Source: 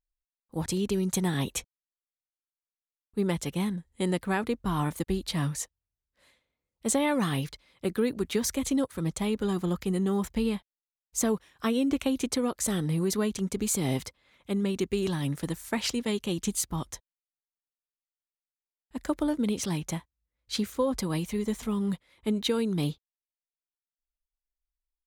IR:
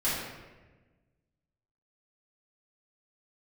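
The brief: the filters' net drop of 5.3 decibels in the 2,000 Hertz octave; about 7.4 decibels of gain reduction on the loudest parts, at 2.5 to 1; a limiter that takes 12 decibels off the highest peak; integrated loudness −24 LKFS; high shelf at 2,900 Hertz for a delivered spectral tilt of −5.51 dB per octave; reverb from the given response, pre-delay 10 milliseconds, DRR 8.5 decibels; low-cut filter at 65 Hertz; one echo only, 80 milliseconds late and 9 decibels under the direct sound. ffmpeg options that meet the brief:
-filter_complex "[0:a]highpass=65,equalizer=frequency=2000:width_type=o:gain=-4.5,highshelf=frequency=2900:gain=-5.5,acompressor=threshold=-34dB:ratio=2.5,alimiter=level_in=10dB:limit=-24dB:level=0:latency=1,volume=-10dB,aecho=1:1:80:0.355,asplit=2[link_01][link_02];[1:a]atrim=start_sample=2205,adelay=10[link_03];[link_02][link_03]afir=irnorm=-1:irlink=0,volume=-18.5dB[link_04];[link_01][link_04]amix=inputs=2:normalize=0,volume=17.5dB"

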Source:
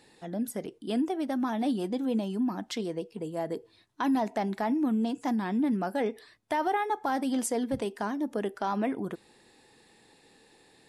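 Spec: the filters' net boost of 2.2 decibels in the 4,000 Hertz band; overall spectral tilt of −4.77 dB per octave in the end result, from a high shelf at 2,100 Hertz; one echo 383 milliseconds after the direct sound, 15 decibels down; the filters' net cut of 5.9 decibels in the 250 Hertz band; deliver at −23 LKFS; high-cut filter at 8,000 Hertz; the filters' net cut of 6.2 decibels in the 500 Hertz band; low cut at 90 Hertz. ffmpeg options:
ffmpeg -i in.wav -af "highpass=90,lowpass=8000,equalizer=frequency=250:width_type=o:gain=-5,equalizer=frequency=500:width_type=o:gain=-6.5,highshelf=frequency=2100:gain=-4,equalizer=frequency=4000:width_type=o:gain=7,aecho=1:1:383:0.178,volume=12.5dB" out.wav

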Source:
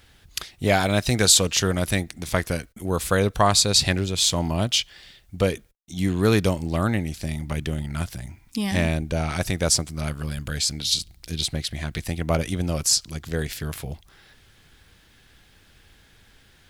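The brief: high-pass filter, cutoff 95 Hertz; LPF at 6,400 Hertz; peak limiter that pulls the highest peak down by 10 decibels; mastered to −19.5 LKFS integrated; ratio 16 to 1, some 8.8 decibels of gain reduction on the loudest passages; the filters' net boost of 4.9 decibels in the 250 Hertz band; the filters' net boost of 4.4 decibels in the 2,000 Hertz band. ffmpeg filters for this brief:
ffmpeg -i in.wav -af "highpass=95,lowpass=6400,equalizer=frequency=250:width_type=o:gain=7,equalizer=frequency=2000:width_type=o:gain=5.5,acompressor=threshold=-20dB:ratio=16,volume=8.5dB,alimiter=limit=-6.5dB:level=0:latency=1" out.wav

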